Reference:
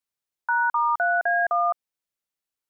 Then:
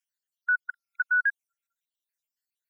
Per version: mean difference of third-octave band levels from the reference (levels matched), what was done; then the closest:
6.0 dB: time-frequency cells dropped at random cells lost 64%
linear-phase brick-wall high-pass 1,400 Hz
level +3 dB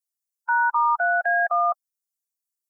1.0 dB: spectral dynamics exaggerated over time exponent 2
high-pass filter 930 Hz 12 dB per octave
parametric band 1,500 Hz −6 dB 1.1 octaves
level +8 dB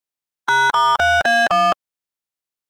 16.5 dB: ceiling on every frequency bin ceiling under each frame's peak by 16 dB
in parallel at −3 dB: brickwall limiter −20.5 dBFS, peak gain reduction 7 dB
on the sum: leveller curve on the samples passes 3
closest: second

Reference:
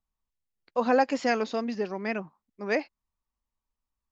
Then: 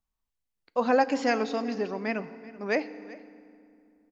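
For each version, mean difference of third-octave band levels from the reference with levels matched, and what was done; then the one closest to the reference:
2.5 dB: single-tap delay 383 ms −20 dB
feedback delay network reverb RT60 2.5 s, low-frequency decay 1.4×, high-frequency decay 0.7×, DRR 14 dB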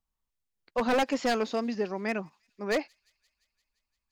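3.5 dB: wave folding −19 dBFS
on a send: delay with a high-pass on its return 173 ms, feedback 70%, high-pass 4,100 Hz, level −24 dB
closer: first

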